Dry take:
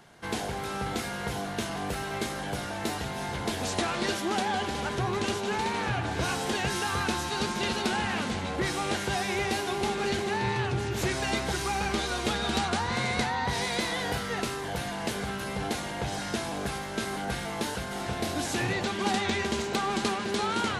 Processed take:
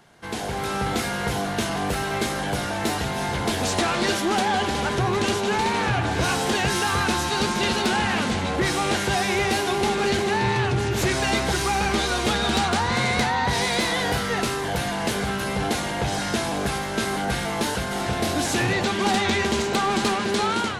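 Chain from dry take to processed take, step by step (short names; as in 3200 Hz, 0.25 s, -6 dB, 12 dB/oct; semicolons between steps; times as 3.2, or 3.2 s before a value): AGC gain up to 8 dB; soft clip -14 dBFS, distortion -19 dB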